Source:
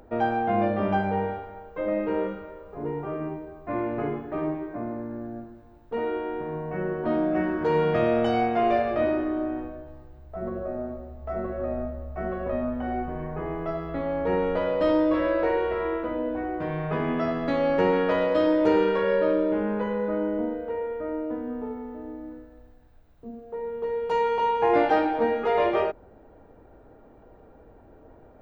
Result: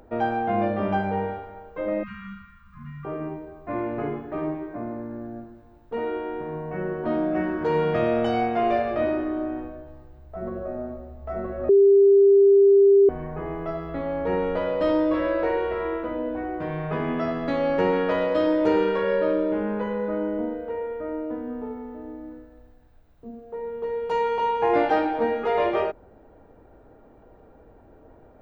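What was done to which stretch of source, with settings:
0:02.03–0:03.05: linear-phase brick-wall band-stop 250–1,000 Hz
0:11.69–0:13.09: beep over 397 Hz −11.5 dBFS

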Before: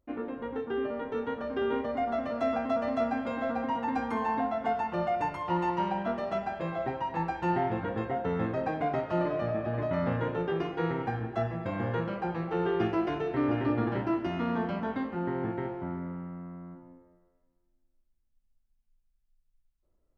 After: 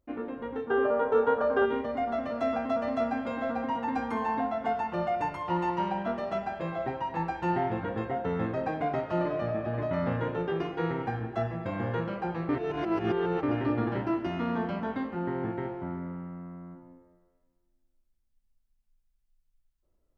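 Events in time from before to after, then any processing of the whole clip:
0:00.70–0:01.65: gain on a spectral selection 390–1,700 Hz +10 dB
0:12.49–0:13.43: reverse

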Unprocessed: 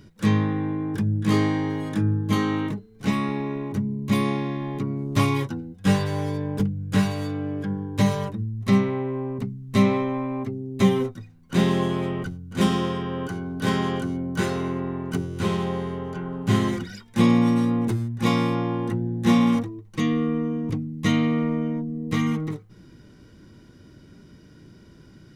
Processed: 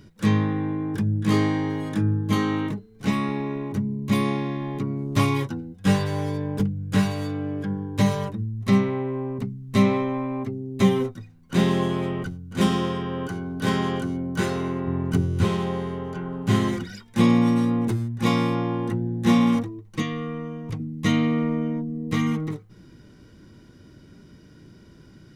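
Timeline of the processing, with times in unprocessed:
0:14.87–0:15.45: parametric band 65 Hz +11.5 dB 2.5 octaves
0:20.02–0:20.80: parametric band 280 Hz −12 dB 1 octave

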